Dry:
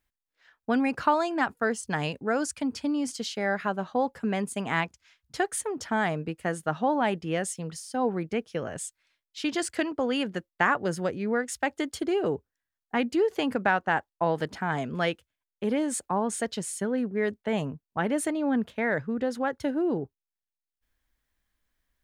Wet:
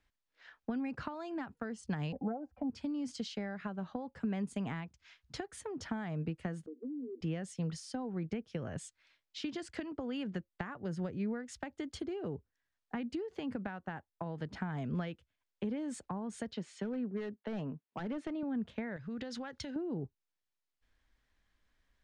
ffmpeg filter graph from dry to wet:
-filter_complex "[0:a]asettb=1/sr,asplit=3[a][b][c];[a]atrim=end=2.124[d];[b]atrim=start=2.12:end=2.7,asetpts=PTS-STARTPTS,afade=t=in:d=0.004:c=qsin,afade=t=out:st=0.576:d=0.004:c=qsin,lowpass=f=740:t=q:w=8.4,aecho=1:1:3.8:0.87,atrim=end_sample=25578[e];[c]atrim=start=2.696[f];[d][e]acrossfade=d=0.004:c1=hsin:c2=qsin[g];[g][f]acrossfade=d=0.004:c1=qsin:c2=hsin,asettb=1/sr,asplit=3[h][i][j];[h]atrim=end=6.664[k];[i]atrim=start=6.66:end=7.21,asetpts=PTS-STARTPTS,afade=t=in:d=0.004:c=qsin,afade=t=out:st=0.546:d=0.004:c=qsin,asuperpass=centerf=340:order=20:qfactor=1.4,acompressor=threshold=-42dB:ratio=2.5:attack=3.2:release=140:knee=1:detection=peak[l];[j]atrim=start=7.206[m];[k][l]acrossfade=d=0.004:c1=hsin:c2=qsin[n];[n][m]acrossfade=d=0.004:c1=qsin:c2=hsin,asettb=1/sr,asplit=3[o][p][q];[o]atrim=end=16.534[r];[p]atrim=start=16.53:end=18.43,asetpts=PTS-STARTPTS,afade=t=in:d=0.004:c=qsin,afade=t=out:st=1.896:d=0.004:c=qsin,highpass=220,lowpass=4.1k,asoftclip=type=hard:threshold=-24dB[s];[q]atrim=start=18.426[t];[r][s]acrossfade=d=0.004:c1=hsin:c2=qsin[u];[u][t]acrossfade=d=0.004:c1=qsin:c2=hsin,asettb=1/sr,asplit=3[v][w][x];[v]atrim=end=18.964[y];[w]atrim=start=18.96:end=19.76,asetpts=PTS-STARTPTS,afade=t=in:d=0.004:c=qsin,afade=t=out:st=0.796:d=0.004:c=qsin,acompressor=threshold=-38dB:ratio=4:attack=3.2:release=140:knee=1:detection=peak,equalizer=f=4.9k:w=0.38:g=15[z];[x]atrim=start=19.756[aa];[y][z]acrossfade=d=0.004:c1=hsin:c2=qsin[ab];[ab][aa]acrossfade=d=0.004:c1=qsin:c2=hsin,acompressor=threshold=-30dB:ratio=6,lowpass=5.5k,acrossover=split=220[ac][ad];[ad]acompressor=threshold=-50dB:ratio=2.5[ae];[ac][ae]amix=inputs=2:normalize=0,volume=3dB"

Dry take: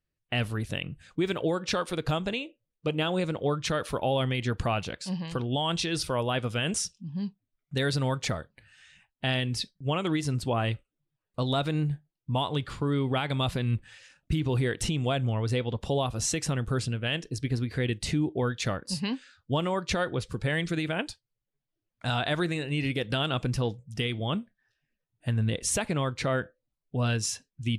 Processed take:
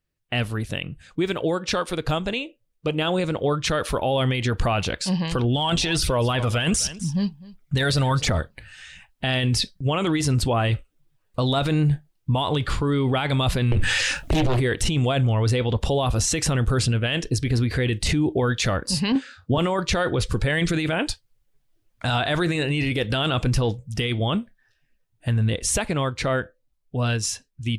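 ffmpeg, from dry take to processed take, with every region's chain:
-filter_complex "[0:a]asettb=1/sr,asplit=3[a][b][c];[a]atrim=end=5.444[d];[b]atrim=start=5.44:end=8.4,asetpts=PTS-STARTPTS,afade=t=in:d=0.004:c=qsin,afade=t=out:st=2.956:d=0.004:c=qsin,aphaser=in_gain=1:out_gain=1:delay=1.8:decay=0.43:speed=1.4:type=triangular,aecho=1:1:253:0.0944,atrim=end_sample=130536[e];[c]atrim=start=8.396[f];[d][e]acrossfade=d=0.004:c1=hsin:c2=qsin[g];[g][f]acrossfade=d=0.004:c1=qsin:c2=hsin,asettb=1/sr,asplit=3[h][i][j];[h]atrim=end=13.724[k];[i]atrim=start=13.72:end=14.6,asetpts=PTS-STARTPTS,afade=t=in:d=0.004:c=qsin,afade=t=out:st=0.876:d=0.004:c=qsin,asplit=2[l][m];[m]adelay=23,volume=-10dB[n];[l][n]amix=inputs=2:normalize=0,atrim=end_sample=38808,acompressor=threshold=-34dB:ratio=5:attack=3.2:release=140:knee=1:detection=peak,aeval=exprs='0.106*sin(PI/2*6.31*val(0)/0.106)':c=same[o];[j]atrim=start=14.596[p];[k][o]acrossfade=d=0.004:c1=hsin:c2=qsin[q];[q][p]acrossfade=d=0.004:c1=qsin:c2=hsin,asettb=1/sr,asplit=3[r][s][t];[r]atrim=end=19.124[u];[s]atrim=start=19.12:end=19.58,asetpts=PTS-STARTPTS,afade=t=in:d=0.004:c=qsin,afade=t=out:st=0.456:d=0.004:c=qsin,highpass=94,tiltshelf=f=1.5k:g=5,asplit=2[v][w];[w]adelay=33,volume=-7.5dB[x];[v][x]amix=inputs=2:normalize=0,atrim=end_sample=20286[y];[t]atrim=start=19.576[z];[u][y]acrossfade=d=0.004:c1=hsin:c2=qsin[aa];[aa][z]acrossfade=d=0.004:c1=qsin:c2=hsin,asubboost=boost=3:cutoff=72,dynaudnorm=f=400:g=21:m=8.5dB,alimiter=limit=-18.5dB:level=0:latency=1:release=10,volume=4.5dB"

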